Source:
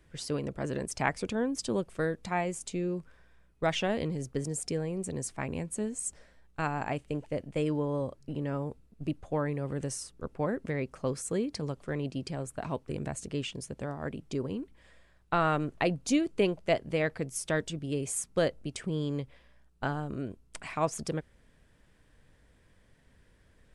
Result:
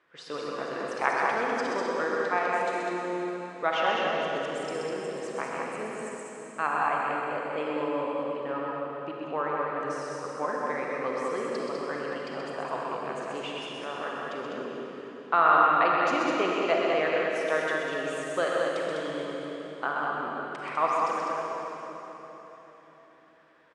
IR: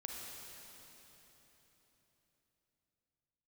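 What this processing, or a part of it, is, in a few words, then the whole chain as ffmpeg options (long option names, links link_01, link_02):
station announcement: -filter_complex "[0:a]highpass=450,lowpass=3500,equalizer=frequency=1200:width_type=o:width=0.57:gain=9,aecho=1:1:128.3|201.2:0.562|0.631[link_01];[1:a]atrim=start_sample=2205[link_02];[link_01][link_02]afir=irnorm=-1:irlink=0,volume=5dB"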